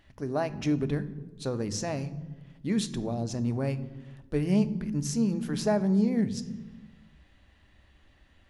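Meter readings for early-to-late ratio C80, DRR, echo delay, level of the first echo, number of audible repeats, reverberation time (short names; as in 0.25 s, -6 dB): 17.5 dB, 12.0 dB, none, none, none, 1.2 s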